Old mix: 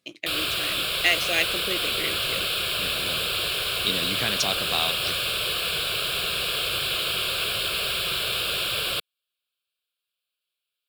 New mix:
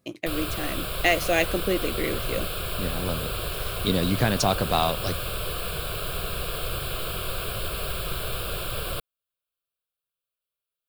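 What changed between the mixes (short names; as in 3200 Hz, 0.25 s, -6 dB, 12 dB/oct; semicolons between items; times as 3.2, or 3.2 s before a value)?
speech +7.5 dB; master: remove weighting filter D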